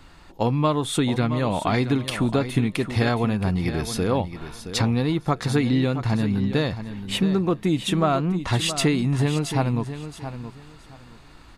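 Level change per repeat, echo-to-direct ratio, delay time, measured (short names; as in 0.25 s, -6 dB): -13.5 dB, -11.0 dB, 0.671 s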